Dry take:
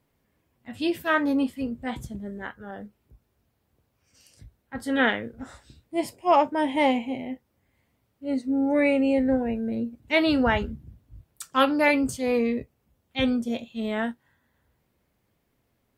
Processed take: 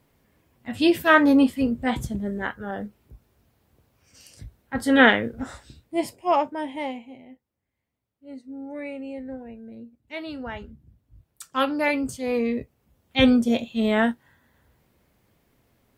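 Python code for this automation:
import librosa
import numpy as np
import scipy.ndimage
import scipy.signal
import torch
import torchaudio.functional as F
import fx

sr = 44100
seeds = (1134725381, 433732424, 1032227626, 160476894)

y = fx.gain(x, sr, db=fx.line((5.39, 7.0), (6.29, -1.0), (7.12, -13.0), (10.41, -13.0), (11.43, -2.5), (12.18, -2.5), (13.24, 7.0)))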